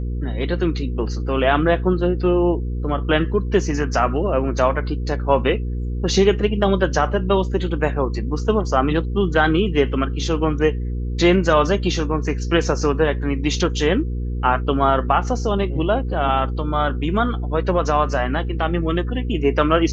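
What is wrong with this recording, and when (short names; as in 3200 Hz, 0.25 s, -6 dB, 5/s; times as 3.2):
hum 60 Hz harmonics 8 -24 dBFS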